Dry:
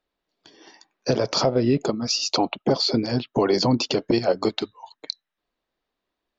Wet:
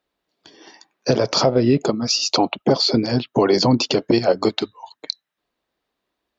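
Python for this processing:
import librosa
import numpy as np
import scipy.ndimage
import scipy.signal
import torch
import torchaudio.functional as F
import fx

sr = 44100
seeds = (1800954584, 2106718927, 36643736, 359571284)

y = scipy.signal.sosfilt(scipy.signal.butter(2, 48.0, 'highpass', fs=sr, output='sos'), x)
y = F.gain(torch.from_numpy(y), 4.0).numpy()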